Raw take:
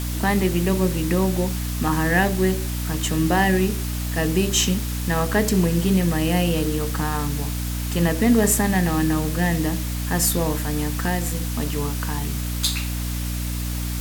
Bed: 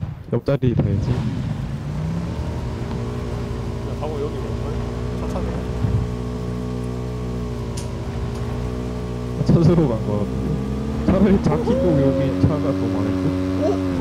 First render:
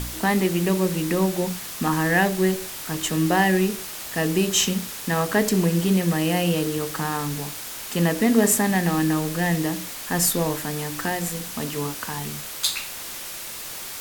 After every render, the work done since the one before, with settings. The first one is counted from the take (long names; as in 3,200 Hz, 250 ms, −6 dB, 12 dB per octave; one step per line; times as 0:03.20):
hum removal 60 Hz, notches 5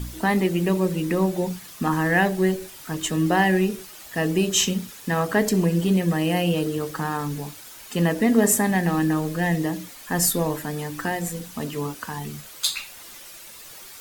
broadband denoise 10 dB, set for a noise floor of −35 dBFS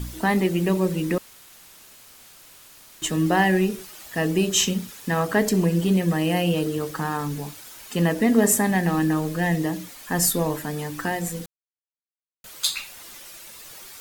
0:01.18–0:03.02: fill with room tone
0:11.46–0:12.44: silence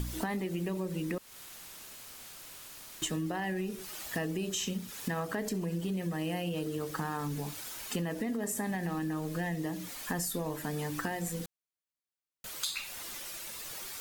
brickwall limiter −14 dBFS, peak gain reduction 7.5 dB
downward compressor 6 to 1, threshold −32 dBFS, peak gain reduction 13 dB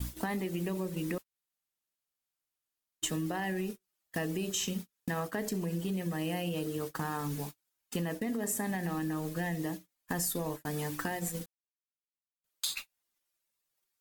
noise gate −36 dBFS, range −44 dB
high-shelf EQ 9,300 Hz +5 dB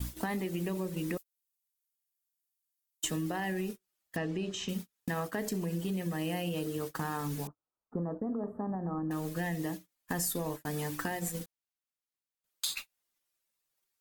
0:01.17–0:03.04: first difference
0:04.16–0:04.69: high-frequency loss of the air 130 metres
0:07.47–0:09.11: elliptic low-pass filter 1,300 Hz, stop band 50 dB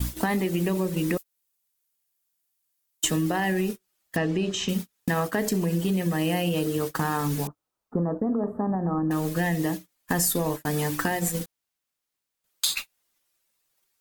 level +9 dB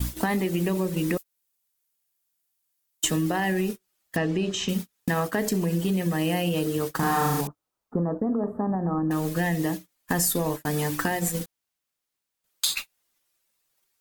0:06.96–0:07.41: flutter between parallel walls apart 6.1 metres, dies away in 0.99 s